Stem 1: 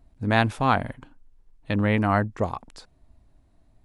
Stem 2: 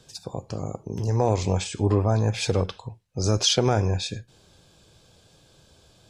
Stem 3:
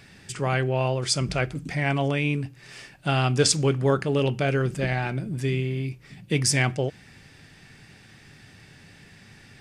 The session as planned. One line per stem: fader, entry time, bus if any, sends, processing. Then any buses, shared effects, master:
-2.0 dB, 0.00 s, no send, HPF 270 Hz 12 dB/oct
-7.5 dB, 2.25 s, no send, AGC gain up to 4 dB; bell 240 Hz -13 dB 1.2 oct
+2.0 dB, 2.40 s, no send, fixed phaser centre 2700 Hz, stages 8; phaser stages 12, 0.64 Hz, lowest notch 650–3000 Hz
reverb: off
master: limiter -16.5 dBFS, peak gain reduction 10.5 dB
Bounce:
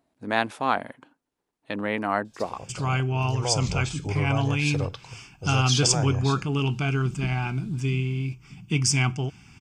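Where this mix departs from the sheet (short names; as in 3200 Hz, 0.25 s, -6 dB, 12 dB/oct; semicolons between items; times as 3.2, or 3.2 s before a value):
stem 3: missing phaser stages 12, 0.64 Hz, lowest notch 650–3000 Hz; master: missing limiter -16.5 dBFS, peak gain reduction 10.5 dB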